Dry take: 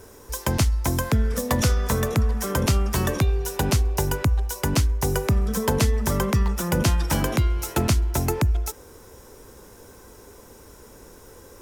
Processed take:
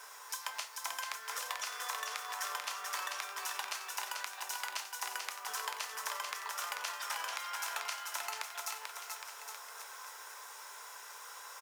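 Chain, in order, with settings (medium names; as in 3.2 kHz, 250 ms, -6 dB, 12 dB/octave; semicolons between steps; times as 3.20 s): high-pass 920 Hz 24 dB/octave; treble shelf 8 kHz -10 dB; compression 6:1, threshold -42 dBFS, peak gain reduction 17 dB; added noise blue -72 dBFS; bouncing-ball echo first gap 440 ms, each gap 0.85×, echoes 5; on a send at -7 dB: reverberation RT60 0.35 s, pre-delay 3 ms; on the sum: trim +3.5 dB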